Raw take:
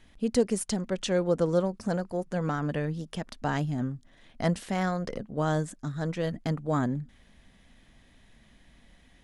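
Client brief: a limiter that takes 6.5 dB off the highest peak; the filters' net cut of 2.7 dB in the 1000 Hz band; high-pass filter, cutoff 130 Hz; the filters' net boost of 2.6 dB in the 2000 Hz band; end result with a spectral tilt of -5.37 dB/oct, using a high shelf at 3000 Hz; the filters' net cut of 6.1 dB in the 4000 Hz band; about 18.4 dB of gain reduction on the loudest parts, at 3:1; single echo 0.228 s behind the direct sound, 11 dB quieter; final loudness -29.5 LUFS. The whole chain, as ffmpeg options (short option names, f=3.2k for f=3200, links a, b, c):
-af "highpass=130,equalizer=f=1k:t=o:g=-5,equalizer=f=2k:t=o:g=8.5,highshelf=f=3k:g=-6,equalizer=f=4k:t=o:g=-6.5,acompressor=threshold=-46dB:ratio=3,alimiter=level_in=13.5dB:limit=-24dB:level=0:latency=1,volume=-13.5dB,aecho=1:1:228:0.282,volume=18dB"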